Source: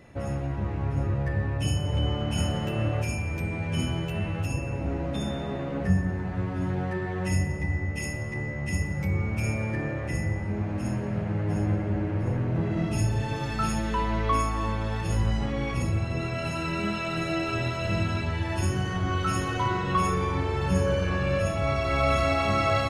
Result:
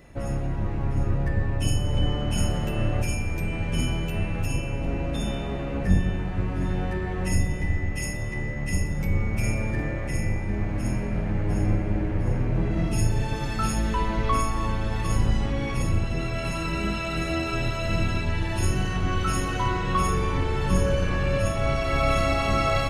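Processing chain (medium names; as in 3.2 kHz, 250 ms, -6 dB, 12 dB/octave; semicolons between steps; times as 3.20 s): octave divider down 2 oct, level +1 dB; treble shelf 7.6 kHz +8 dB; band-passed feedback delay 752 ms, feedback 72%, band-pass 2.6 kHz, level -10 dB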